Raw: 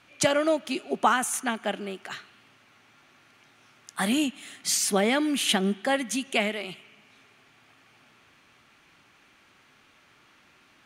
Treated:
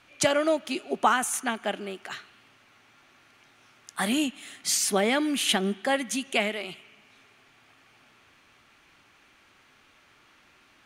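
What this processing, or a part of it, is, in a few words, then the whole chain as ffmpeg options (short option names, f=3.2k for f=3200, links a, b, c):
low shelf boost with a cut just above: -af "lowshelf=f=62:g=6,equalizer=f=160:t=o:w=1.2:g=-4"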